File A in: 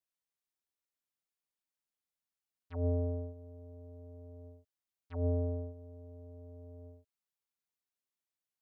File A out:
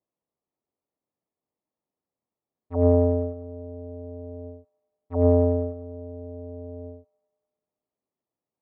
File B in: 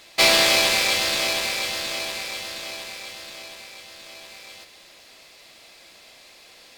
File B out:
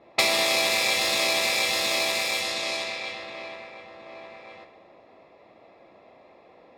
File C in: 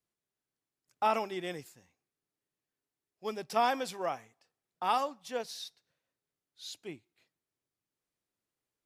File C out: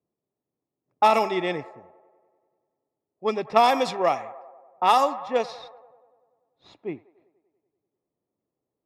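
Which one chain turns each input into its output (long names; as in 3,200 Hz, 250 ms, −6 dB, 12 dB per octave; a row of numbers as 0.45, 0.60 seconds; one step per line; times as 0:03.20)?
stylus tracing distortion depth 0.032 ms
downward compressor 8 to 1, threshold −25 dBFS
harmonic generator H 7 −32 dB, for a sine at −12.5 dBFS
notch comb filter 1,500 Hz
delay with a band-pass on its return 97 ms, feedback 70%, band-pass 1,100 Hz, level −15.5 dB
low-pass that shuts in the quiet parts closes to 620 Hz, open at −29.5 dBFS
loudness normalisation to −23 LKFS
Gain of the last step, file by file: +18.0, +7.0, +14.0 decibels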